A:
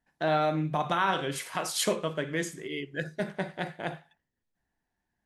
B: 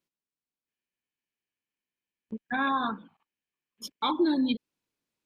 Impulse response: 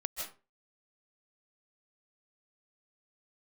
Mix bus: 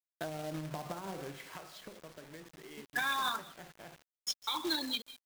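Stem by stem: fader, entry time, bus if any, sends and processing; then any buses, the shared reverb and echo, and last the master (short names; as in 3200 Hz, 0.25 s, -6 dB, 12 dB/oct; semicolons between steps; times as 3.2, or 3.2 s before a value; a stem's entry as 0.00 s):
1.08 s -4 dB -> 1.81 s -14 dB, 0.00 s, send -13 dB, echo send -23.5 dB, treble ducked by the level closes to 490 Hz, closed at -22.5 dBFS; compressor 8:1, threshold -35 dBFS, peak gain reduction 12 dB
-2.5 dB, 0.45 s, send -22 dB, no echo send, weighting filter ITU-R 468; low shelf 280 Hz -5 dB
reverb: on, RT60 0.35 s, pre-delay 0.115 s
echo: feedback echo 0.358 s, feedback 50%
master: companded quantiser 4-bit; limiter -24 dBFS, peak gain reduction 12 dB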